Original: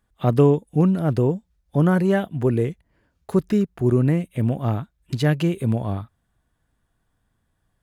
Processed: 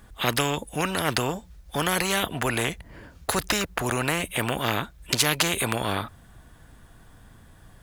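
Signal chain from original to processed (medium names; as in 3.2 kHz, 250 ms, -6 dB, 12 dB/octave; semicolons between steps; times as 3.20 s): spectrum-flattening compressor 4:1; trim +4 dB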